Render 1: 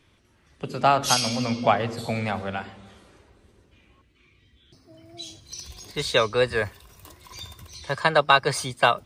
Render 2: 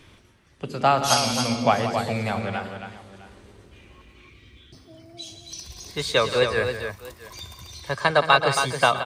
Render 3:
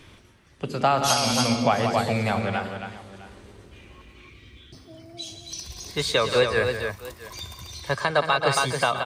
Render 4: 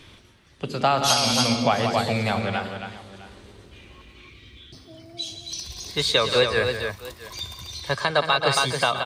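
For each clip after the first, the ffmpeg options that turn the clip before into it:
ffmpeg -i in.wav -af "aecho=1:1:116|173|272|658:0.133|0.266|0.447|0.1,areverse,acompressor=mode=upward:threshold=-40dB:ratio=2.5,areverse" out.wav
ffmpeg -i in.wav -af "alimiter=limit=-11dB:level=0:latency=1:release=177,volume=2dB" out.wav
ffmpeg -i in.wav -af "equalizer=frequency=3800:width=1.6:gain=5.5" out.wav

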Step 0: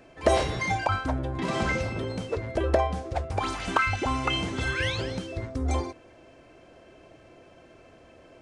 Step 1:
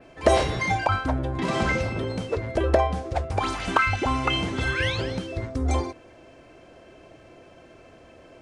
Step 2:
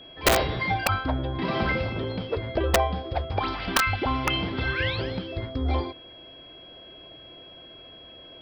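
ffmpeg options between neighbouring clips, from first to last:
ffmpeg -i in.wav -af "adynamicequalizer=threshold=0.00282:dfrequency=7200:dqfactor=1:tfrequency=7200:tqfactor=1:attack=5:release=100:ratio=0.375:range=2:mode=cutabove:tftype=bell,volume=3dB" out.wav
ffmpeg -i in.wav -af "aresample=11025,aresample=44100,aeval=exprs='val(0)+0.00631*sin(2*PI*3300*n/s)':channel_layout=same,aeval=exprs='(mod(3.55*val(0)+1,2)-1)/3.55':channel_layout=same,volume=-1.5dB" out.wav

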